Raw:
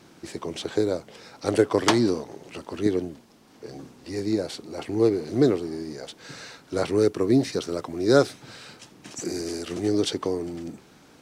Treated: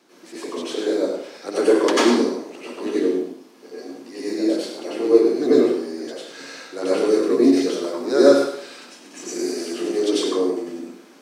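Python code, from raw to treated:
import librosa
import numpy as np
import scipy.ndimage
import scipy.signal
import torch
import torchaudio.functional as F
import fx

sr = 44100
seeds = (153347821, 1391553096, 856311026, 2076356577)

y = scipy.signal.sosfilt(scipy.signal.butter(4, 240.0, 'highpass', fs=sr, output='sos'), x)
y = y + 10.0 ** (-9.0 / 20.0) * np.pad(y, (int(101 * sr / 1000.0), 0))[:len(y)]
y = fx.rev_plate(y, sr, seeds[0], rt60_s=0.63, hf_ratio=0.85, predelay_ms=80, drr_db=-9.0)
y = y * 10.0 ** (-5.5 / 20.0)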